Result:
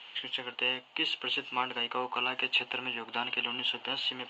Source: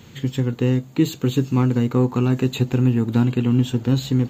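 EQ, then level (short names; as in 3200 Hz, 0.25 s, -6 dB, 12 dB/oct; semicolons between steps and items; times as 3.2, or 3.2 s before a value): resonant high-pass 820 Hz, resonance Q 2; synth low-pass 2900 Hz, resonance Q 8.6; -7.0 dB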